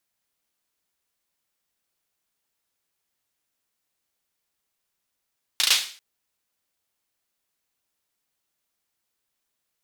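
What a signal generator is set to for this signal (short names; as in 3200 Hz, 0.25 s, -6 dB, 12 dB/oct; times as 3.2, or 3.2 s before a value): hand clap length 0.39 s, bursts 4, apart 35 ms, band 3600 Hz, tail 0.44 s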